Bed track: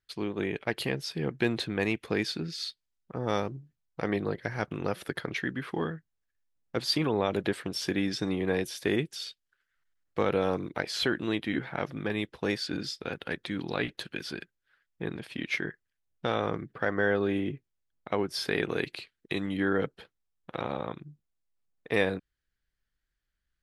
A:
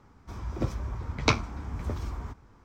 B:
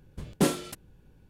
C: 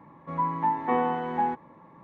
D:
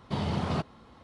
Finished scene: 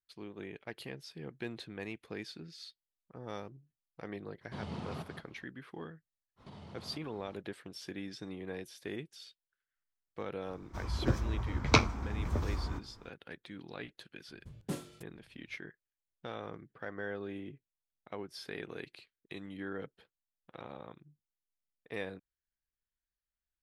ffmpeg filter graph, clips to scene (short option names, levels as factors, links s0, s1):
-filter_complex "[4:a]asplit=2[s0][s1];[0:a]volume=0.211[s2];[s0]aecho=1:1:184:0.398[s3];[s1]acompressor=threshold=0.00794:ratio=6:attack=3.2:release=140:knee=1:detection=peak[s4];[2:a]equalizer=f=110:w=1.5:g=11.5[s5];[s3]atrim=end=1.03,asetpts=PTS-STARTPTS,volume=0.237,afade=t=in:d=0.004:c=hsin,afade=t=out:st=1.026:d=0.004:c=hsin,adelay=194481S[s6];[s4]atrim=end=1.03,asetpts=PTS-STARTPTS,volume=0.501,afade=t=in:d=0.05,afade=t=out:st=0.98:d=0.05,adelay=6360[s7];[1:a]atrim=end=2.64,asetpts=PTS-STARTPTS,volume=0.944,afade=t=in:d=0.004:c=hsin,afade=t=out:st=2.636:d=0.004:c=hsin,adelay=10460[s8];[s5]atrim=end=1.29,asetpts=PTS-STARTPTS,volume=0.15,afade=t=in:d=0.004:c=hsin,afade=t=out:st=1.286:d=0.004:c=hsin,adelay=629748S[s9];[s2][s6][s7][s8][s9]amix=inputs=5:normalize=0"